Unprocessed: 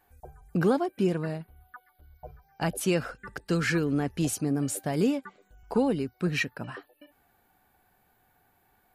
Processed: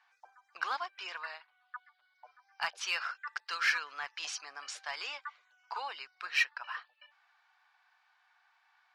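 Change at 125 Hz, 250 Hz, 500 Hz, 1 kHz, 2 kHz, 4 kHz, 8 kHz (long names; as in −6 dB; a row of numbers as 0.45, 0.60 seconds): below −40 dB, below −40 dB, −24.0 dB, −2.0 dB, +1.5 dB, +2.0 dB, −8.5 dB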